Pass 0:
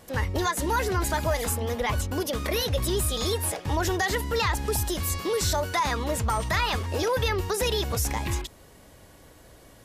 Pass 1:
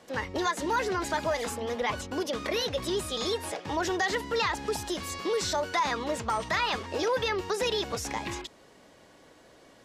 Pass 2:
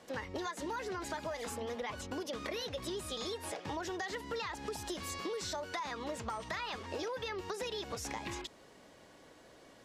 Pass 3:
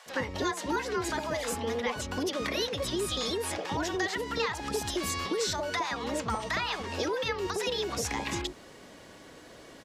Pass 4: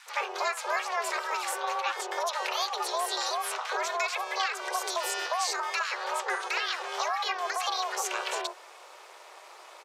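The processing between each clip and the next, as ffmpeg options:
-filter_complex "[0:a]acrossover=split=170 7400:gain=0.158 1 0.141[s0][s1][s2];[s0][s1][s2]amix=inputs=3:normalize=0,volume=0.841"
-af "acompressor=threshold=0.02:ratio=6,volume=0.75"
-filter_complex "[0:a]acrossover=split=740[s0][s1];[s0]adelay=60[s2];[s2][s1]amix=inputs=2:normalize=0,volume=2.82"
-af "afreqshift=490,aeval=exprs='val(0)*sin(2*PI*180*n/s)':c=same,volume=1.5"

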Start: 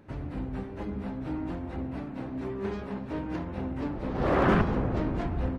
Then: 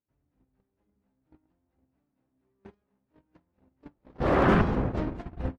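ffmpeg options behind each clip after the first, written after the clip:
-af "agate=range=0.00794:threshold=0.0447:ratio=16:detection=peak,volume=1.19"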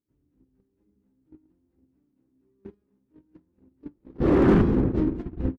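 -filter_complex "[0:a]firequalizer=gain_entry='entry(130,0);entry(330,7);entry(650,-11);entry(960,-8)':delay=0.05:min_phase=1,asplit=2[s0][s1];[s1]aeval=exprs='0.119*(abs(mod(val(0)/0.119+3,4)-2)-1)':c=same,volume=0.562[s2];[s0][s2]amix=inputs=2:normalize=0"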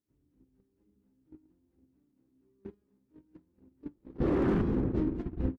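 -af "acompressor=threshold=0.0708:ratio=6,volume=0.794"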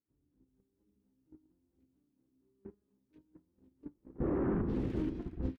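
-filter_complex "[0:a]acrossover=split=2100[s0][s1];[s1]adelay=480[s2];[s0][s2]amix=inputs=2:normalize=0,volume=0.562"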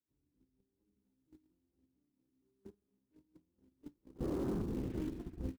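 -filter_complex "[0:a]acrossover=split=230|460|1200[s0][s1][s2][s3];[s1]acrusher=bits=4:mode=log:mix=0:aa=0.000001[s4];[s3]tremolo=f=0.77:d=0.65[s5];[s0][s4][s2][s5]amix=inputs=4:normalize=0,volume=0.596"

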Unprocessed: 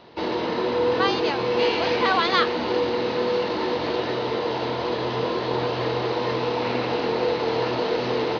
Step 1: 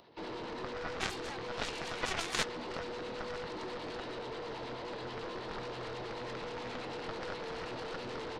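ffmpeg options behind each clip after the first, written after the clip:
-filter_complex "[0:a]acrossover=split=940[s0][s1];[s0]aeval=exprs='val(0)*(1-0.5/2+0.5/2*cos(2*PI*9.3*n/s))':c=same[s2];[s1]aeval=exprs='val(0)*(1-0.5/2-0.5/2*cos(2*PI*9.3*n/s))':c=same[s3];[s2][s3]amix=inputs=2:normalize=0,aeval=exprs='0.316*(cos(1*acos(clip(val(0)/0.316,-1,1)))-cos(1*PI/2))+0.126*(cos(3*acos(clip(val(0)/0.316,-1,1)))-cos(3*PI/2))+0.0126*(cos(4*acos(clip(val(0)/0.316,-1,1)))-cos(4*PI/2))+0.01*(cos(7*acos(clip(val(0)/0.316,-1,1)))-cos(7*PI/2))':c=same,acompressor=mode=upward:threshold=0.00158:ratio=2.5,volume=0.708"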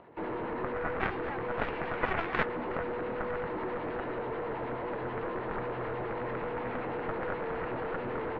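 -af "lowpass=f=2100:w=0.5412,lowpass=f=2100:w=1.3066,volume=2.11"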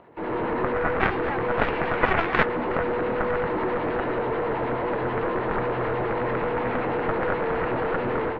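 -af "dynaudnorm=f=180:g=3:m=2.24,volume=1.33"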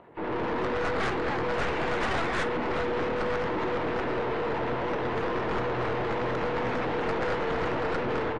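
-af "aecho=1:1:623:0.168,aeval=exprs='(tanh(20*val(0)+0.35)-tanh(0.35))/20':c=same" -ar 22050 -c:a aac -b:a 32k

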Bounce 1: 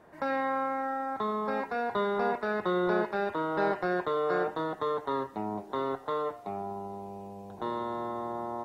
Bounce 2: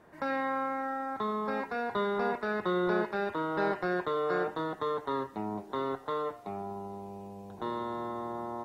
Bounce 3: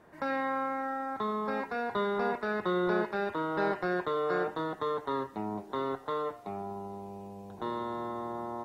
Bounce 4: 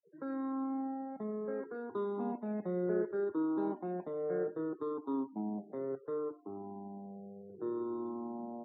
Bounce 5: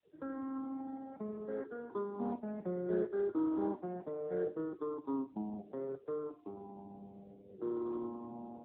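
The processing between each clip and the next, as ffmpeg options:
-af "equalizer=f=680:w=1.3:g=-3.5"
-af anull
-af "afftfilt=real='re*pow(10,12/40*sin(2*PI*(0.55*log(max(b,1)*sr/1024/100)/log(2)-(-0.67)*(pts-256)/sr)))':imag='im*pow(10,12/40*sin(2*PI*(0.55*log(max(b,1)*sr/1024/100)/log(2)-(-0.67)*(pts-256)/sr)))':win_size=1024:overlap=0.75,afftfilt=real='re*gte(hypot(re,im),0.01)':imag='im*gte(hypot(re,im),0.01)':win_size=1024:overlap=0.75,bandpass=f=290:t=q:w=1.9:csg=0"
-ar 8000 -c:a libopencore_amrnb -b:a 10200

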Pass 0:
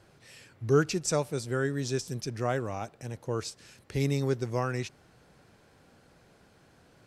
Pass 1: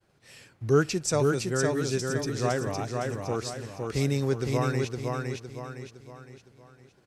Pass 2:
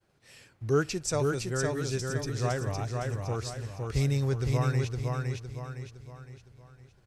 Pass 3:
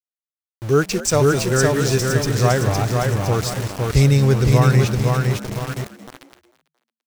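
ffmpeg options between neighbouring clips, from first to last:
-filter_complex "[0:a]agate=range=0.0224:threshold=0.00251:ratio=3:detection=peak,asplit=2[s0][s1];[s1]aecho=0:1:511|1022|1533|2044|2555:0.668|0.281|0.118|0.0495|0.0208[s2];[s0][s2]amix=inputs=2:normalize=0,volume=1.19"
-af "asubboost=boost=8:cutoff=91,volume=0.708"
-filter_complex "[0:a]aeval=exprs='val(0)*gte(abs(val(0)),0.0126)':c=same,dynaudnorm=f=200:g=9:m=2.11,asplit=4[s0][s1][s2][s3];[s1]adelay=223,afreqshift=75,volume=0.168[s4];[s2]adelay=446,afreqshift=150,volume=0.0624[s5];[s3]adelay=669,afreqshift=225,volume=0.0229[s6];[s0][s4][s5][s6]amix=inputs=4:normalize=0,volume=2.11"

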